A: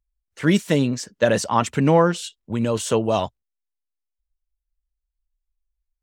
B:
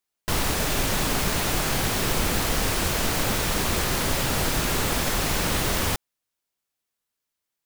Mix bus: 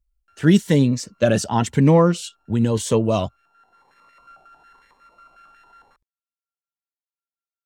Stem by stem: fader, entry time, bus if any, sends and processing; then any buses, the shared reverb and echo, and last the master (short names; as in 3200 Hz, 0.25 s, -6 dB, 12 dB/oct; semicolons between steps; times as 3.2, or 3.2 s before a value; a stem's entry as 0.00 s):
+0.5 dB, 0.00 s, no send, low shelf 250 Hz +6.5 dB
-10.0 dB, 0.00 s, no send, sample sorter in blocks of 32 samples; limiter -19 dBFS, peak gain reduction 8.5 dB; stepped band-pass 11 Hz 790–1800 Hz; auto duck -15 dB, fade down 0.50 s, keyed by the first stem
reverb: off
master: cascading phaser rising 0.97 Hz